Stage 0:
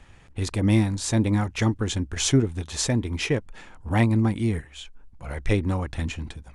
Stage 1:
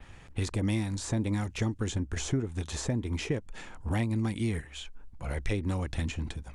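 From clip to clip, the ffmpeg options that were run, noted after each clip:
-filter_complex "[0:a]adynamicequalizer=threshold=0.00631:dfrequency=7200:dqfactor=1.8:tfrequency=7200:tqfactor=1.8:attack=5:release=100:ratio=0.375:range=2.5:mode=boostabove:tftype=bell,acrossover=split=720|2000[s0][s1][s2];[s0]acompressor=threshold=0.0355:ratio=4[s3];[s1]acompressor=threshold=0.00355:ratio=4[s4];[s2]acompressor=threshold=0.00794:ratio=4[s5];[s3][s4][s5]amix=inputs=3:normalize=0,volume=1.12"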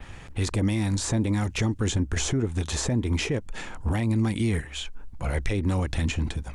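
-af "alimiter=level_in=1.12:limit=0.0631:level=0:latency=1:release=41,volume=0.891,volume=2.51"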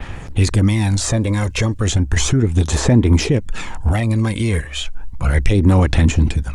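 -af "aphaser=in_gain=1:out_gain=1:delay=1.9:decay=0.47:speed=0.34:type=sinusoidal,volume=2.37"

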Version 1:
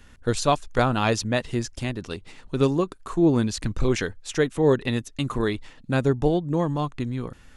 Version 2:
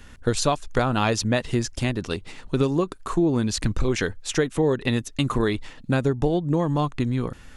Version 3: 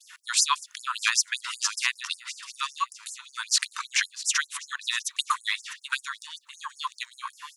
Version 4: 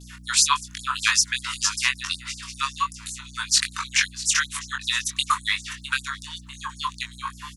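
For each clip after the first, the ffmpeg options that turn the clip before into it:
-af "acompressor=threshold=0.0794:ratio=10,volume=1.78"
-af "aecho=1:1:652|1304|1956|2608:0.178|0.0729|0.0299|0.0123,agate=range=0.0224:threshold=0.00282:ratio=3:detection=peak,afftfilt=real='re*gte(b*sr/1024,880*pow(5100/880,0.5+0.5*sin(2*PI*5.2*pts/sr)))':imag='im*gte(b*sr/1024,880*pow(5100/880,0.5+0.5*sin(2*PI*5.2*pts/sr)))':win_size=1024:overlap=0.75,volume=2.11"
-filter_complex "[0:a]aeval=exprs='val(0)+0.00501*(sin(2*PI*60*n/s)+sin(2*PI*2*60*n/s)/2+sin(2*PI*3*60*n/s)/3+sin(2*PI*4*60*n/s)/4+sin(2*PI*5*60*n/s)/5)':c=same,asplit=2[s0][s1];[s1]adelay=22,volume=0.531[s2];[s0][s2]amix=inputs=2:normalize=0,volume=1.41"

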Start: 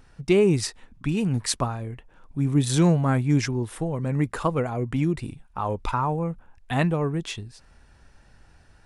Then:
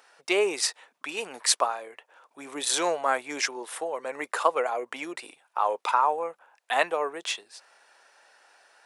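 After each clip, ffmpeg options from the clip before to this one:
-af "highpass=f=520:w=0.5412,highpass=f=520:w=1.3066,volume=1.58"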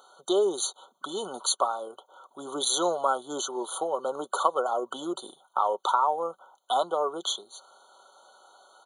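-af "acompressor=threshold=0.0316:ratio=2,aecho=1:1:5.3:0.36,afftfilt=real='re*eq(mod(floor(b*sr/1024/1500),2),0)':imag='im*eq(mod(floor(b*sr/1024/1500),2),0)':win_size=1024:overlap=0.75,volume=1.78"

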